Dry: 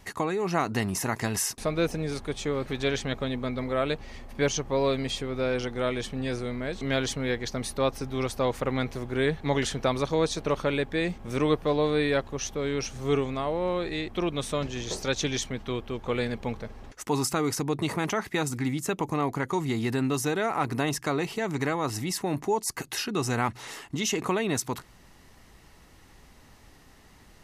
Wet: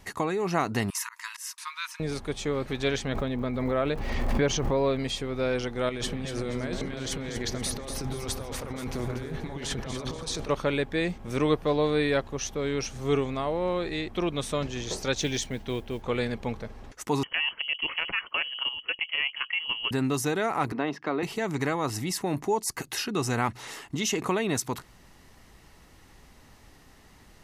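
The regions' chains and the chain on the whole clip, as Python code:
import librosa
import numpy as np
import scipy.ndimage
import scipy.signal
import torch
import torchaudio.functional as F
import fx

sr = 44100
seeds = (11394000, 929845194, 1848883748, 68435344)

y = fx.chain(x, sr, fx.brickwall_highpass(low_hz=900.0),
    fx.auto_swell(attack_ms=222.0), at=(0.9, 2.0))
y = fx.lowpass(y, sr, hz=2200.0, slope=6, at=(3.07, 4.98), fade=0.02)
y = fx.dmg_crackle(y, sr, seeds[0], per_s=220.0, level_db=-52.0, at=(3.07, 4.98), fade=0.02)
y = fx.pre_swell(y, sr, db_per_s=22.0, at=(3.07, 4.98), fade=0.02)
y = fx.chain(y, sr, fx.over_compress(threshold_db=-35.0, ratio=-1.0),
    fx.echo_alternate(ms=120, hz=1500.0, feedback_pct=62, wet_db=-4.0), at=(5.89, 10.49))
y = fx.chain(y, sr, fx.peak_eq(hz=1200.0, db=-10.0, octaves=0.26),
    fx.mod_noise(seeds[1], snr_db=30), at=(15.18, 16.02))
y = fx.chain(y, sr, fx.freq_invert(carrier_hz=3100),
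    fx.level_steps(step_db=9), at=(17.23, 19.91))
y = fx.chain(y, sr, fx.highpass(hz=190.0, slope=24),
    fx.air_absorb(metres=290.0), at=(20.72, 21.23))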